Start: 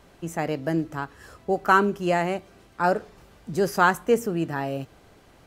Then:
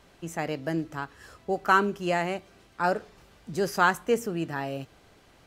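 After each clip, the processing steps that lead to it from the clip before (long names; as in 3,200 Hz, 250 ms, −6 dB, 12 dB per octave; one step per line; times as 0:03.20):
parametric band 3,700 Hz +4.5 dB 2.7 octaves
level −4.5 dB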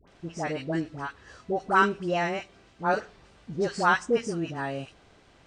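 hearing-aid frequency compression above 3,600 Hz 1.5 to 1
all-pass dispersion highs, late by 77 ms, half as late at 940 Hz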